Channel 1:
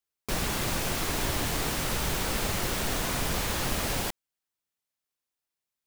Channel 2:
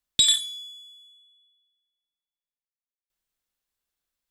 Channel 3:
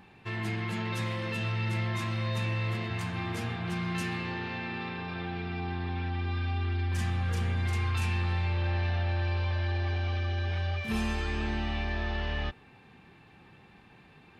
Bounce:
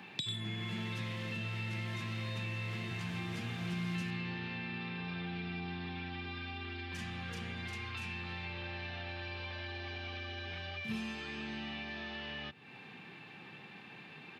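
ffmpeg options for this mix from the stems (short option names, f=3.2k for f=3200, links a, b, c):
-filter_complex "[0:a]lowpass=11k,aeval=exprs='val(0)*sin(2*PI*350*n/s)':c=same,volume=-12.5dB[a];[1:a]volume=1dB[b];[2:a]volume=2.5dB[c];[a][b][c]amix=inputs=3:normalize=0,firequalizer=gain_entry='entry(1000,0);entry(2600,7);entry(8400,-3)':delay=0.05:min_phase=1,acrossover=split=180|3100[d][e][f];[d]acompressor=threshold=-33dB:ratio=4[g];[e]acompressor=threshold=-46dB:ratio=4[h];[f]acompressor=threshold=-53dB:ratio=4[i];[g][h][i]amix=inputs=3:normalize=0,highpass=f=130:w=0.5412,highpass=f=130:w=1.3066"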